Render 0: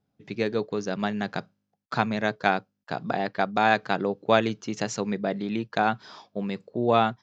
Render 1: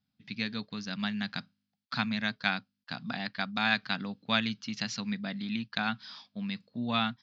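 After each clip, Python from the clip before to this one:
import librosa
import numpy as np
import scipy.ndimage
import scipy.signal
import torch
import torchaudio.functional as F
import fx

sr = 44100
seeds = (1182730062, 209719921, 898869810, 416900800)

y = fx.curve_eq(x, sr, hz=(150.0, 250.0, 350.0, 1500.0, 4700.0, 7300.0), db=(0, 5, -18, 3, 12, -7))
y = y * 10.0 ** (-7.0 / 20.0)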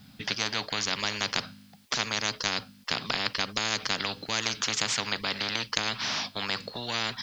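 y = fx.spectral_comp(x, sr, ratio=10.0)
y = y * 10.0 ** (3.0 / 20.0)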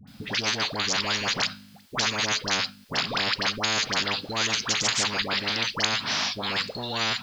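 y = fx.dispersion(x, sr, late='highs', ms=75.0, hz=920.0)
y = y * 10.0 ** (4.0 / 20.0)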